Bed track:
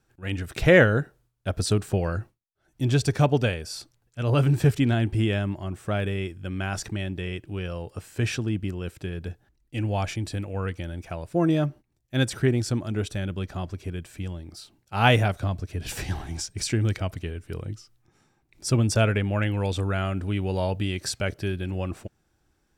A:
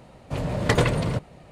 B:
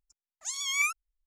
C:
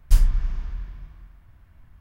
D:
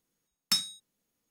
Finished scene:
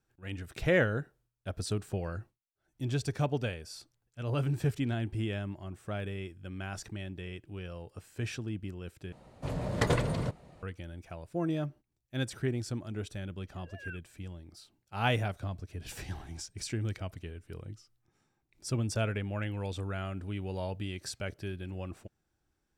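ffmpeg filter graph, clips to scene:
-filter_complex "[0:a]volume=0.316[s0];[1:a]equalizer=f=2600:w=1.7:g=-3[s1];[2:a]lowpass=f=3300:t=q:w=0.5098,lowpass=f=3300:t=q:w=0.6013,lowpass=f=3300:t=q:w=0.9,lowpass=f=3300:t=q:w=2.563,afreqshift=-3900[s2];[s0]asplit=2[s3][s4];[s3]atrim=end=9.124[s5];[s1]atrim=end=1.51,asetpts=PTS-STARTPTS,volume=0.447[s6];[s4]atrim=start=10.626[s7];[s2]atrim=end=1.26,asetpts=PTS-STARTPTS,volume=0.15,afade=t=in:d=0.004:c=hsin,afade=t=out:st=1.256:d=0.004:c=hsin,adelay=13060[s8];[s5][s6]acrossfade=d=0.004:c1=hsin:c2=hsin[s9];[s9][s7]acrossfade=d=0.004:c1=hsin:c2=hsin[s10];[s10][s8]amix=inputs=2:normalize=0"

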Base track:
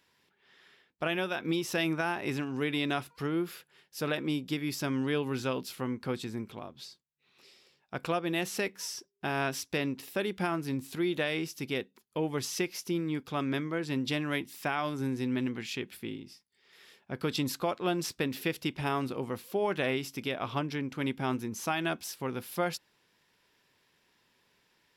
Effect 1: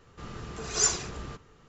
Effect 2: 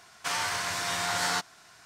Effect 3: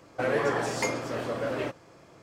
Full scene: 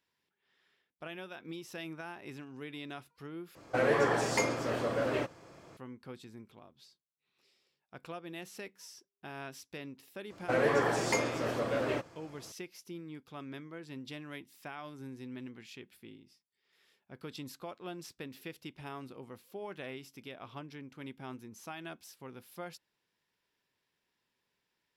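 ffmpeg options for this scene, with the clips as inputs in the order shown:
-filter_complex "[3:a]asplit=2[s0][s1];[0:a]volume=0.224,asplit=2[s2][s3];[s2]atrim=end=3.554[s4];[s0]atrim=end=2.22,asetpts=PTS-STARTPTS,volume=0.891[s5];[s3]atrim=start=5.766[s6];[s1]atrim=end=2.22,asetpts=PTS-STARTPTS,volume=0.841,afade=t=in:d=0.004:c=hsin,afade=t=out:st=2.216:d=0.004:c=hsin,adelay=10300[s7];[s4][s5]acrossfade=d=0.004:c1=hsin:c2=hsin[s8];[s8][s6]acrossfade=d=0.004:c1=hsin:c2=hsin[s9];[s9][s7]amix=inputs=2:normalize=0"

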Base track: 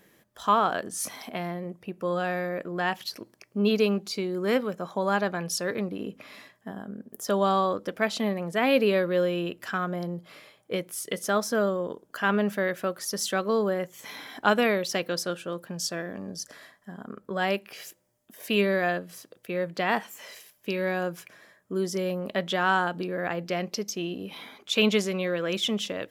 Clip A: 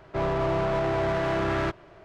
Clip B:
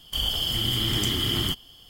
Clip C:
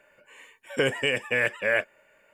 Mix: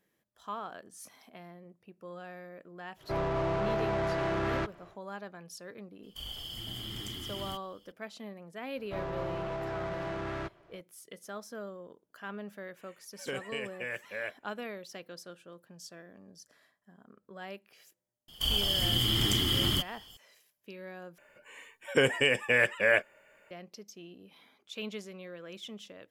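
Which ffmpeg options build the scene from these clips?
-filter_complex "[1:a]asplit=2[s0][s1];[2:a]asplit=2[s2][s3];[3:a]asplit=2[s4][s5];[0:a]volume=0.141,asplit=2[s6][s7];[s6]atrim=end=21.184[s8];[s5]atrim=end=2.33,asetpts=PTS-STARTPTS,volume=0.944[s9];[s7]atrim=start=23.506[s10];[s0]atrim=end=2.04,asetpts=PTS-STARTPTS,volume=0.562,afade=t=in:d=0.1,afade=t=out:st=1.94:d=0.1,adelay=2950[s11];[s2]atrim=end=1.89,asetpts=PTS-STARTPTS,volume=0.168,afade=t=in:d=0.004:c=hsin,afade=t=out:st=1.886:d=0.004:c=hsin,adelay=6030[s12];[s1]atrim=end=2.04,asetpts=PTS-STARTPTS,volume=0.299,afade=t=in:d=0.004:c=hsin,afade=t=out:st=2.036:d=0.004:c=hsin,adelay=8770[s13];[s4]atrim=end=2.33,asetpts=PTS-STARTPTS,volume=0.211,afade=t=in:d=0.004:c=hsin,afade=t=out:st=2.326:d=0.004:c=hsin,adelay=12490[s14];[s3]atrim=end=1.89,asetpts=PTS-STARTPTS,volume=0.75,afade=t=in:d=0.004:c=hsin,afade=t=out:st=1.886:d=0.004:c=hsin,adelay=806148S[s15];[s8][s9]acrossfade=d=0.004:c1=hsin:c2=hsin[s16];[s16][s10]acrossfade=d=0.004:c1=hsin:c2=hsin[s17];[s17][s11][s12][s13][s14][s15]amix=inputs=6:normalize=0"

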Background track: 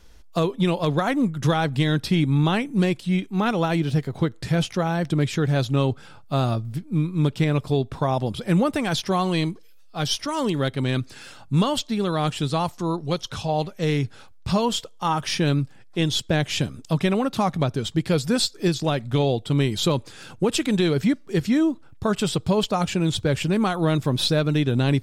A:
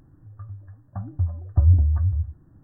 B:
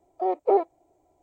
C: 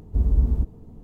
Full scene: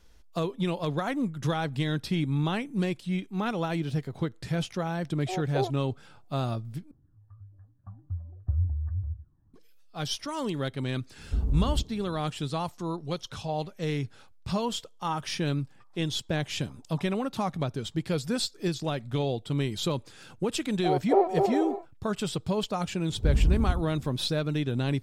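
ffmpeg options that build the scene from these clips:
-filter_complex "[2:a]asplit=2[s0][s1];[1:a]asplit=2[s2][s3];[3:a]asplit=2[s4][s5];[0:a]volume=0.422[s6];[s2]aphaser=in_gain=1:out_gain=1:delay=1.2:decay=0.57:speed=1.4:type=triangular[s7];[s4]alimiter=limit=0.158:level=0:latency=1:release=71[s8];[s3]highpass=f=890:t=q:w=9.1[s9];[s1]aecho=1:1:250|400|490|544|576.4:0.631|0.398|0.251|0.158|0.1[s10];[s5]aecho=1:1:76:0.531[s11];[s6]asplit=2[s12][s13];[s12]atrim=end=6.914[s14];[s7]atrim=end=2.63,asetpts=PTS-STARTPTS,volume=0.15[s15];[s13]atrim=start=9.536[s16];[s0]atrim=end=1.22,asetpts=PTS-STARTPTS,volume=0.335,afade=t=in:d=0.004:c=hsin,afade=t=out:st=1.216:d=0.004:c=hsin,adelay=5070[s17];[s8]atrim=end=1.03,asetpts=PTS-STARTPTS,volume=0.668,afade=t=in:d=0.004:c=hsin,afade=t=out:st=1.026:d=0.004:c=hsin,adelay=11180[s18];[s9]atrim=end=2.63,asetpts=PTS-STARTPTS,volume=0.141,afade=t=in:d=0.004:c=hsin,afade=t=out:st=2.626:d=0.004:c=hsin,adelay=15410[s19];[s10]atrim=end=1.22,asetpts=PTS-STARTPTS,volume=0.794,afade=t=in:d=0.004:c=hsin,afade=t=out:st=1.216:d=0.004:c=hsin,adelay=20640[s20];[s11]atrim=end=1.03,asetpts=PTS-STARTPTS,volume=0.708,afade=t=in:d=0.004:c=hsin,afade=t=out:st=1.026:d=0.004:c=hsin,adelay=23090[s21];[s14][s15]acrossfade=d=0.004:c1=hsin:c2=hsin[s22];[s22][s16]acrossfade=d=0.004:c1=hsin:c2=hsin[s23];[s23][s17][s18][s19][s20][s21]amix=inputs=6:normalize=0"

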